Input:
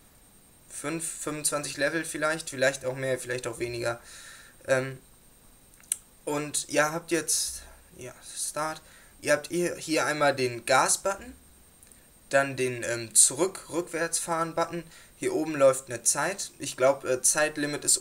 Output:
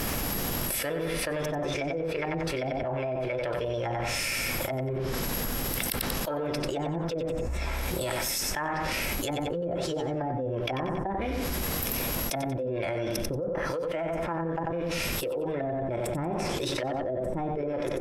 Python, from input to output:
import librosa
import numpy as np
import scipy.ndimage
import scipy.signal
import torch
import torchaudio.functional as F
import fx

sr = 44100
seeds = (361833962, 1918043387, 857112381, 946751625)

p1 = fx.dmg_crackle(x, sr, seeds[0], per_s=280.0, level_db=-54.0)
p2 = fx.formant_shift(p1, sr, semitones=5)
p3 = fx.env_lowpass_down(p2, sr, base_hz=320.0, full_db=-23.0)
p4 = p3 + fx.echo_feedback(p3, sr, ms=92, feedback_pct=28, wet_db=-9.0, dry=0)
p5 = fx.env_flatten(p4, sr, amount_pct=100)
y = p5 * 10.0 ** (-5.0 / 20.0)